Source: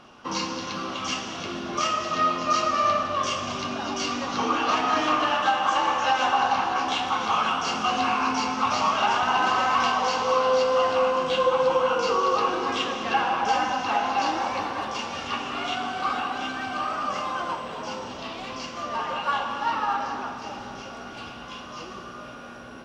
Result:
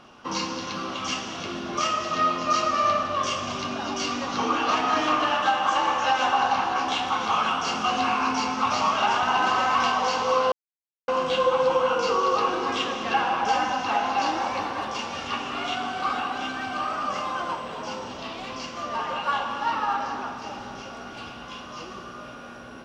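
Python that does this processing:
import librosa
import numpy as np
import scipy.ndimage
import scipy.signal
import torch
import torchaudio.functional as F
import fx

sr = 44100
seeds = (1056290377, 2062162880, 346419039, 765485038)

y = fx.edit(x, sr, fx.silence(start_s=10.52, length_s=0.56), tone=tone)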